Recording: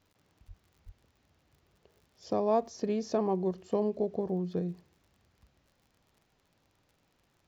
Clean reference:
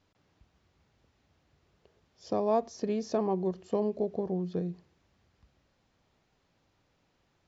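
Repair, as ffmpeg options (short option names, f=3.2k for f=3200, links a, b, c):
-filter_complex "[0:a]adeclick=t=4,asplit=3[a][b][c];[a]afade=t=out:st=0.47:d=0.02[d];[b]highpass=f=140:w=0.5412,highpass=f=140:w=1.3066,afade=t=in:st=0.47:d=0.02,afade=t=out:st=0.59:d=0.02[e];[c]afade=t=in:st=0.59:d=0.02[f];[d][e][f]amix=inputs=3:normalize=0,asplit=3[g][h][i];[g]afade=t=out:st=0.85:d=0.02[j];[h]highpass=f=140:w=0.5412,highpass=f=140:w=1.3066,afade=t=in:st=0.85:d=0.02,afade=t=out:st=0.97:d=0.02[k];[i]afade=t=in:st=0.97:d=0.02[l];[j][k][l]amix=inputs=3:normalize=0"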